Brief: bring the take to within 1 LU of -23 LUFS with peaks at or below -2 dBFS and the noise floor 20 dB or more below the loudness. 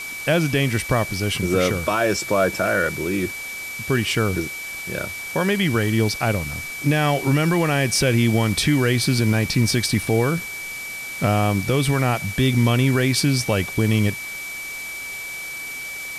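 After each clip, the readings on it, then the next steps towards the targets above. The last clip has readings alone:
steady tone 2300 Hz; tone level -30 dBFS; noise floor -32 dBFS; noise floor target -41 dBFS; loudness -21.0 LUFS; peak -7.5 dBFS; loudness target -23.0 LUFS
-> notch 2300 Hz, Q 30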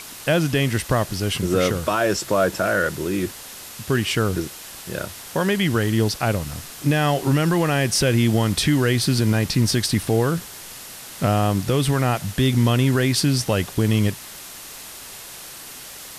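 steady tone none; noise floor -38 dBFS; noise floor target -41 dBFS
-> denoiser 6 dB, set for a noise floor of -38 dBFS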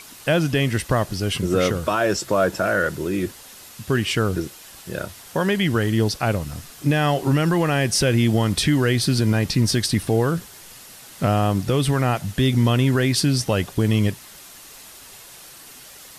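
noise floor -43 dBFS; loudness -21.0 LUFS; peak -8.5 dBFS; loudness target -23.0 LUFS
-> gain -2 dB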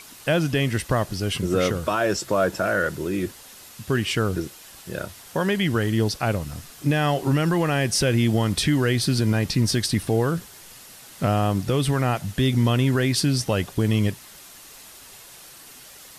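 loudness -23.0 LUFS; peak -10.5 dBFS; noise floor -45 dBFS

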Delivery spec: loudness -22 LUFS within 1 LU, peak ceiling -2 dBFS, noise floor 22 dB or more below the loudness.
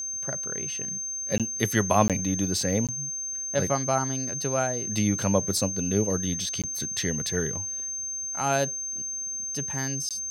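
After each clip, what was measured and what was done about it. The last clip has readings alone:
dropouts 5; longest dropout 17 ms; steady tone 6300 Hz; tone level -30 dBFS; loudness -26.5 LUFS; peak -6.0 dBFS; loudness target -22.0 LUFS
-> interpolate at 1.38/2.08/2.87/6.62/10.09, 17 ms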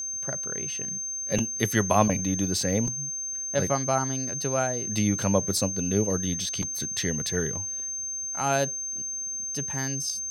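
dropouts 0; steady tone 6300 Hz; tone level -30 dBFS
-> notch 6300 Hz, Q 30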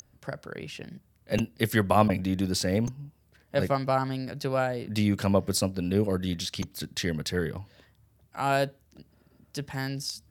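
steady tone none; loudness -28.5 LUFS; peak -6.0 dBFS; loudness target -22.0 LUFS
-> gain +6.5 dB; limiter -2 dBFS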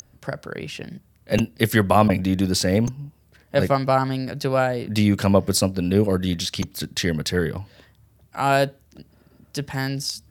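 loudness -22.0 LUFS; peak -2.0 dBFS; noise floor -58 dBFS

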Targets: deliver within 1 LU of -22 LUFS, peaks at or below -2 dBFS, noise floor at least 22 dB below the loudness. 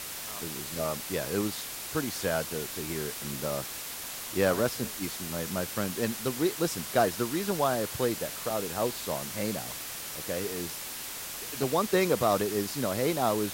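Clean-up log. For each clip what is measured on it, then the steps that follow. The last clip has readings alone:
dropouts 5; longest dropout 1.8 ms; noise floor -39 dBFS; noise floor target -53 dBFS; loudness -30.5 LUFS; peak -13.0 dBFS; loudness target -22.0 LUFS
-> interpolate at 7.51/8.5/11.63/12.41/12.97, 1.8 ms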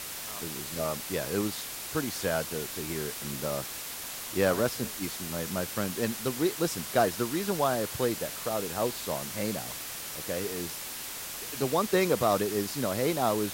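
dropouts 0; noise floor -39 dBFS; noise floor target -53 dBFS
-> denoiser 14 dB, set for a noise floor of -39 dBFS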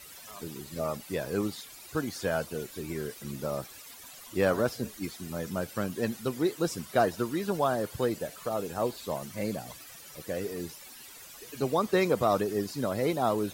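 noise floor -49 dBFS; noise floor target -54 dBFS
-> denoiser 6 dB, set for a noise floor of -49 dBFS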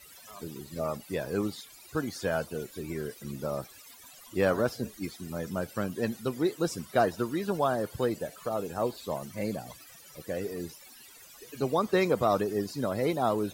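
noise floor -52 dBFS; noise floor target -54 dBFS
-> denoiser 6 dB, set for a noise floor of -52 dBFS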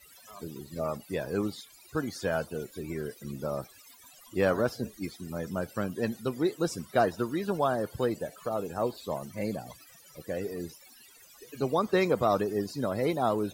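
noise floor -55 dBFS; loudness -31.5 LUFS; peak -13.5 dBFS; loudness target -22.0 LUFS
-> gain +9.5 dB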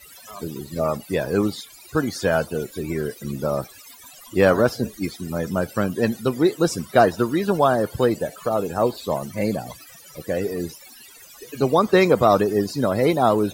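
loudness -22.0 LUFS; peak -4.0 dBFS; noise floor -46 dBFS

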